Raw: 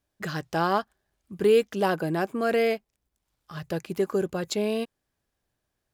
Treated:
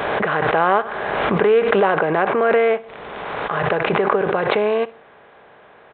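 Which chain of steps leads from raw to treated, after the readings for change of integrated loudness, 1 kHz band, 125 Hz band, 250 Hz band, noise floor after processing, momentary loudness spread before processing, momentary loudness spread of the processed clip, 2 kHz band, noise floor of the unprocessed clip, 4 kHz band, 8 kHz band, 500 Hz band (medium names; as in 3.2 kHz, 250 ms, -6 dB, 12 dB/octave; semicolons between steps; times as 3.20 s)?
+8.0 dB, +11.5 dB, +5.5 dB, +4.5 dB, -48 dBFS, 12 LU, 10 LU, +12.5 dB, -81 dBFS, +5.5 dB, under -25 dB, +8.5 dB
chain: spectral levelling over time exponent 0.6; high-pass 56 Hz; high-order bell 1 kHz +9.5 dB 2.6 oct; in parallel at +1 dB: compression, threshold -22 dBFS, peak gain reduction 13.5 dB; on the sum: bit crusher 8-bit; on a send: feedback delay 62 ms, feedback 35%, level -20 dB; on the sum: resampled via 8 kHz; swell ahead of each attack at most 25 dB/s; trim -5.5 dB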